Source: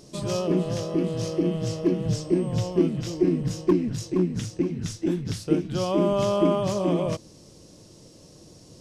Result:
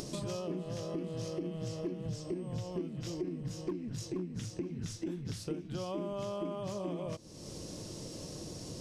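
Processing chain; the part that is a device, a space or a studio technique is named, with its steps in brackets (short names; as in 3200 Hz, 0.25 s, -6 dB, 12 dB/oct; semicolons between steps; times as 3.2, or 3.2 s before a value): upward and downward compression (upward compressor, threshold -25 dBFS; compressor 6:1, threshold -28 dBFS, peak gain reduction 12.5 dB); gain -6.5 dB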